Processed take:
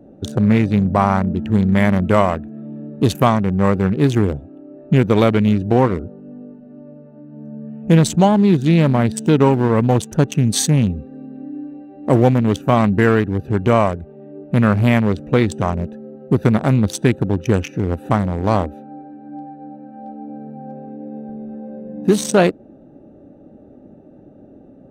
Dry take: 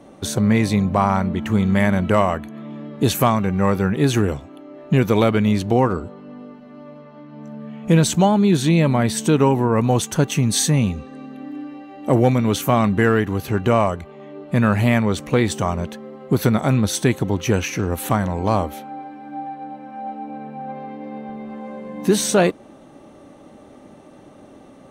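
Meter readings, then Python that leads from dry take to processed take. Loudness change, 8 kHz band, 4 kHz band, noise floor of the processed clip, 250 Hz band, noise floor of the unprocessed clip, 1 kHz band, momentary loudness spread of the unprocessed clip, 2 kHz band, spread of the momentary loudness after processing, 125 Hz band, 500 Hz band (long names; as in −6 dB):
+2.0 dB, −2.5 dB, −1.5 dB, −44 dBFS, +2.5 dB, −45 dBFS, +1.0 dB, 17 LU, +0.5 dB, 19 LU, +3.0 dB, +2.0 dB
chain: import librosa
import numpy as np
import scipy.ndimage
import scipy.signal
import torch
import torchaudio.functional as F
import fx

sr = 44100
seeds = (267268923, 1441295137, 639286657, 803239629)

y = fx.wiener(x, sr, points=41)
y = F.gain(torch.from_numpy(y), 3.0).numpy()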